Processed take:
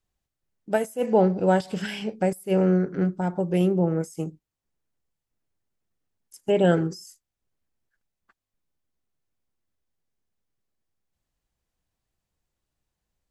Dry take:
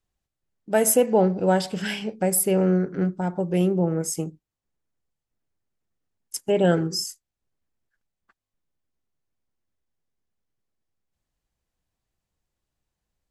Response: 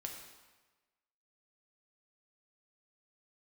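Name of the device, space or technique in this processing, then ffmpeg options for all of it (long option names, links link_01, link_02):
de-esser from a sidechain: -filter_complex "[0:a]asplit=2[link_01][link_02];[link_02]highpass=frequency=5200:width=0.5412,highpass=frequency=5200:width=1.3066,apad=whole_len=586750[link_03];[link_01][link_03]sidechaincompress=threshold=-43dB:ratio=8:attack=2.1:release=61"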